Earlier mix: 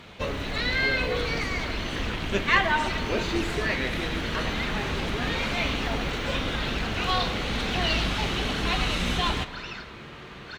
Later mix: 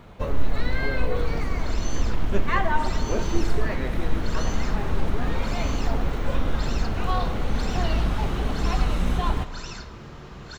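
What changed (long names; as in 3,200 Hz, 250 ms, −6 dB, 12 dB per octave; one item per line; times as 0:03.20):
first sound: add low-shelf EQ 100 Hz −7.5 dB
second sound: remove low-pass filter 2,100 Hz 12 dB per octave
master: remove meter weighting curve D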